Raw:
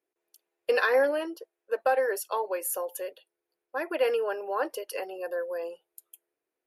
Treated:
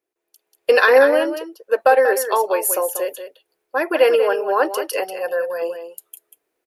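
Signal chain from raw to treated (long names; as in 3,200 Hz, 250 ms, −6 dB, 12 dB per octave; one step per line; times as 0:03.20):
on a send: single-tap delay 189 ms −10 dB
on the sum: automatic gain control gain up to 9 dB
0:05.04–0:05.62: parametric band 360 Hz −11.5 dB 0.39 octaves
level +2.5 dB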